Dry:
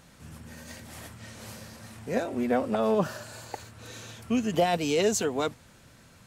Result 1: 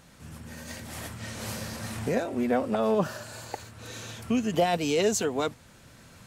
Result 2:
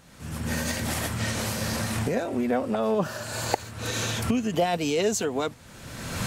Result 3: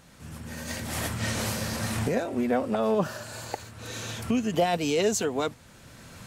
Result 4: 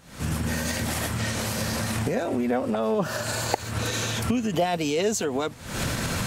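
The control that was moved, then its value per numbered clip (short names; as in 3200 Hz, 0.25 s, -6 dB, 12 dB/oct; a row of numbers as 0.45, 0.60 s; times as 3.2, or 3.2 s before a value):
recorder AGC, rising by: 5.2, 34, 13, 87 dB/s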